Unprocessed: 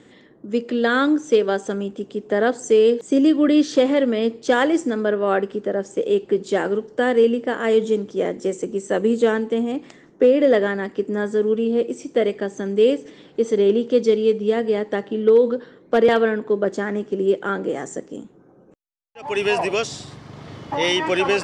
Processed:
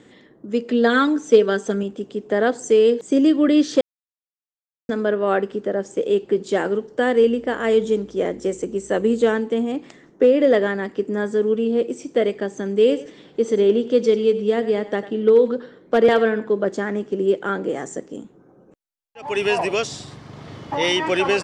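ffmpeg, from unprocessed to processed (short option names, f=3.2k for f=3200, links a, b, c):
-filter_complex "[0:a]asettb=1/sr,asplit=3[a][b][c];[a]atrim=end=0.684[d];[b]atrim=start=0.68:end=1.83,asetpts=PTS-STARTPTS,afade=t=in:d=0.004:c=qsin,afade=t=out:st=1.146:d=0.004:c=qsin,aecho=1:1:4.5:0.55,atrim=end_sample=50715[e];[c]atrim=start=1.826[f];[d][e]acrossfade=d=0.004:c1=hsin:c2=qsin[g];[g][f]acrossfade=d=0.004:c1=qsin:c2=hsin,asettb=1/sr,asplit=3[h][i][j];[h]atrim=end=7.204[k];[i]atrim=start=7.2:end=9.32,asetpts=PTS-STARTPTS,afade=t=in:d=0.004:c=qsin,afade=t=out:st=2.116:d=0.004:c=qsin,aeval=exprs='val(0)+0.00251*(sin(2*PI*60*n/s)+sin(2*PI*2*60*n/s)/2+sin(2*PI*3*60*n/s)/3+sin(2*PI*4*60*n/s)/4+sin(2*PI*5*60*n/s)/5)':c=same[l];[j]atrim=start=9.316[m];[k][l]acrossfade=d=0.004:c1=hsin:c2=qsin[n];[n][m]acrossfade=d=0.004:c1=qsin:c2=hsin,asplit=3[o][p][q];[o]afade=t=out:st=12.89:d=0.02[r];[p]aecho=1:1:98:0.178,afade=t=in:st=12.89:d=0.02,afade=t=out:st=16.66:d=0.02[s];[q]afade=t=in:st=16.66:d=0.02[t];[r][s][t]amix=inputs=3:normalize=0,asplit=3[u][v][w];[u]atrim=end=3.81,asetpts=PTS-STARTPTS,afade=t=out:st=3.806:d=0.004:c=hsin[x];[v]atrim=start=3.81:end=4.89,asetpts=PTS-STARTPTS,volume=0[y];[w]atrim=start=4.89,asetpts=PTS-STARTPTS,afade=t=in:d=0.004:c=hsin[z];[x][y][z]concat=n=3:v=0:a=1"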